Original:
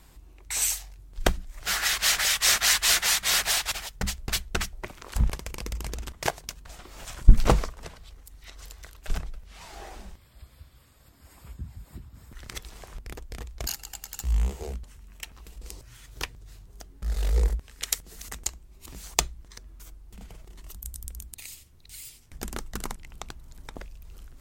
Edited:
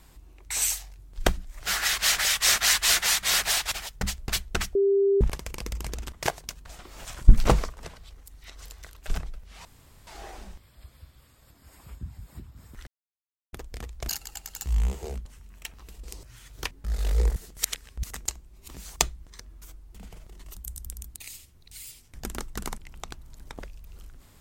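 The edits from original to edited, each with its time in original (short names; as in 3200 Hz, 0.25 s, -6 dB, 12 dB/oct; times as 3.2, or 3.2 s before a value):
4.75–5.21 bleep 396 Hz -18 dBFS
9.65 insert room tone 0.42 s
12.45–13.11 mute
16.29–16.89 cut
17.54–18.21 reverse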